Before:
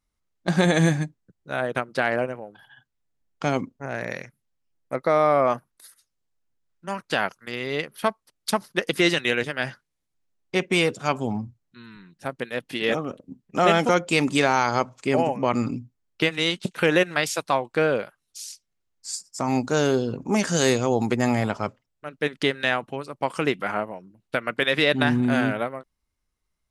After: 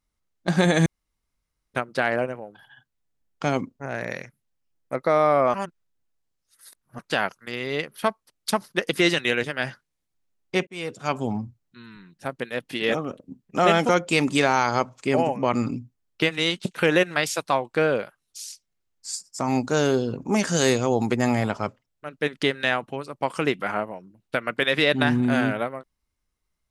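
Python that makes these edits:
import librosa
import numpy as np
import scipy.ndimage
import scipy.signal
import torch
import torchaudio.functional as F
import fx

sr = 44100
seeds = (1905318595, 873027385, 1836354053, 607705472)

y = fx.edit(x, sr, fx.room_tone_fill(start_s=0.86, length_s=0.88),
    fx.reverse_span(start_s=5.54, length_s=1.45),
    fx.fade_in_span(start_s=10.67, length_s=0.53), tone=tone)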